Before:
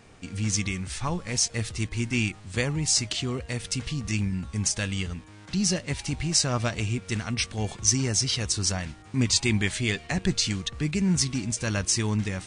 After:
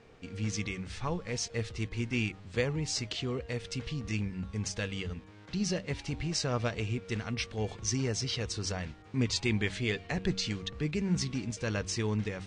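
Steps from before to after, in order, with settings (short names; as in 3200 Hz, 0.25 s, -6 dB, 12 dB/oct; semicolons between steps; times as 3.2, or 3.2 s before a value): LPF 4700 Hz 12 dB/oct; bell 460 Hz +8.5 dB 0.35 oct; de-hum 95.74 Hz, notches 3; gain -5.5 dB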